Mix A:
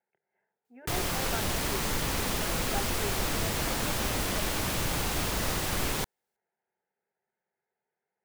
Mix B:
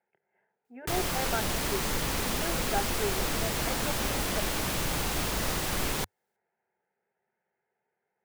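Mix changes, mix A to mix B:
speech +5.5 dB; background: add bell 96 Hz -5 dB 0.33 oct

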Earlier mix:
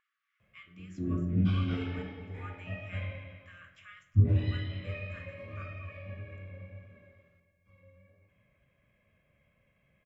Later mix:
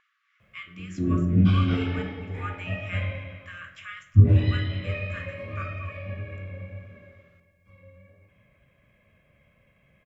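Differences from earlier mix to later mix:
speech +12.0 dB; background +8.0 dB

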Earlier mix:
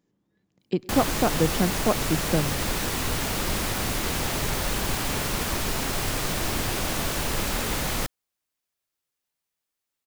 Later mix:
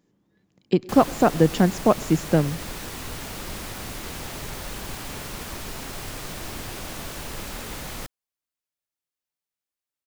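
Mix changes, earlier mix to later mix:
speech +5.5 dB; background -7.5 dB

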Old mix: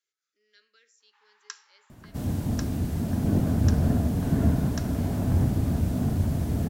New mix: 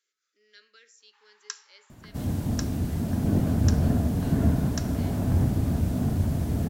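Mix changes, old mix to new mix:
speech +6.5 dB; first sound: add high shelf 5600 Hz +9 dB

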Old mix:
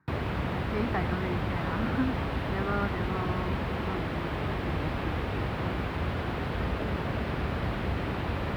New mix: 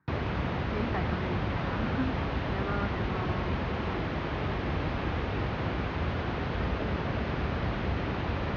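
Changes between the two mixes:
speech -3.5 dB; master: add brick-wall FIR low-pass 6700 Hz

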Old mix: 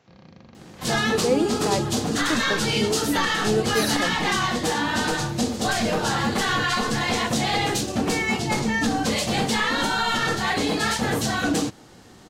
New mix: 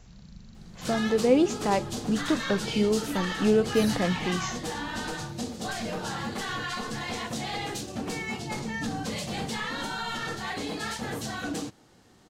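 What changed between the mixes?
speech: remove BPF 270–3600 Hz; first sound: add brick-wall FIR band-stop 240–3500 Hz; second sound -10.0 dB

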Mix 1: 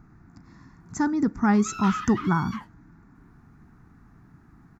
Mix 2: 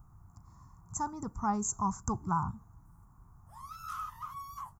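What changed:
background: entry +2.05 s; master: add EQ curve 100 Hz 0 dB, 280 Hz -20 dB, 1100 Hz 0 dB, 1700 Hz -23 dB, 4300 Hz -16 dB, 8600 Hz +9 dB

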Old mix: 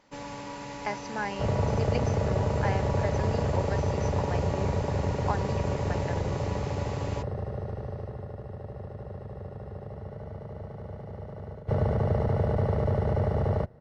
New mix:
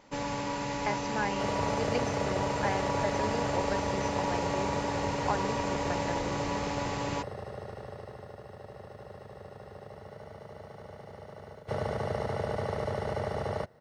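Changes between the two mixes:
first sound +5.5 dB; second sound: add tilt +3.5 dB/oct

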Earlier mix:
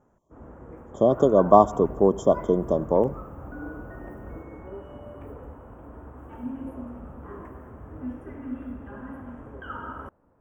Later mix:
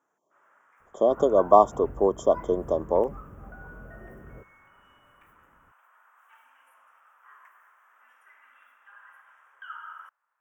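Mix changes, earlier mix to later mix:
speech: add HPF 370 Hz 12 dB/oct; first sound: add HPF 1300 Hz 24 dB/oct; reverb: off

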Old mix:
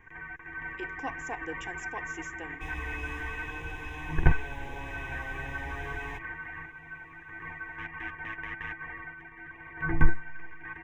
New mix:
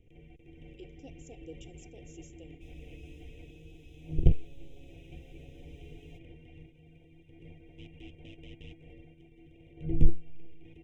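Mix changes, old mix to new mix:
speech -7.0 dB; second sound -11.5 dB; master: add elliptic band-stop 570–3000 Hz, stop band 50 dB

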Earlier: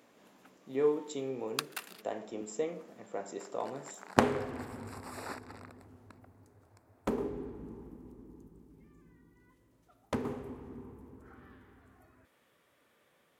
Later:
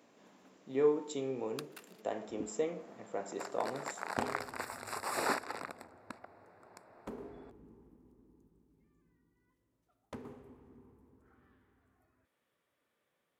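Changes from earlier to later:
first sound -12.0 dB; second sound +10.0 dB

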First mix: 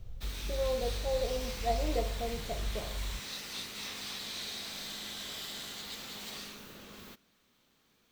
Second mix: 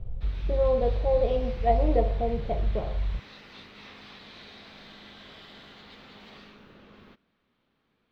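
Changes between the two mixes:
speech +9.5 dB; master: add air absorption 340 m

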